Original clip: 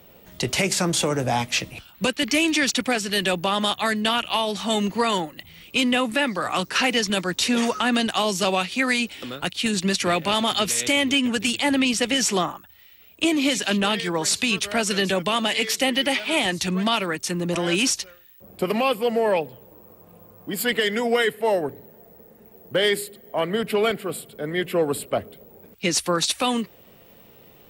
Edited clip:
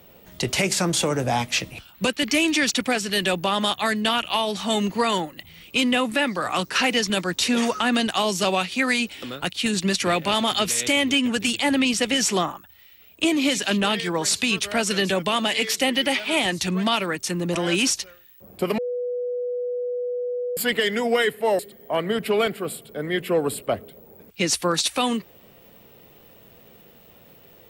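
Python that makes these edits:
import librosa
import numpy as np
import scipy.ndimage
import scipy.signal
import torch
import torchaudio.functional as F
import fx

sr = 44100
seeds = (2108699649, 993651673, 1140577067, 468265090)

y = fx.edit(x, sr, fx.bleep(start_s=18.78, length_s=1.79, hz=491.0, db=-24.0),
    fx.cut(start_s=21.59, length_s=1.44), tone=tone)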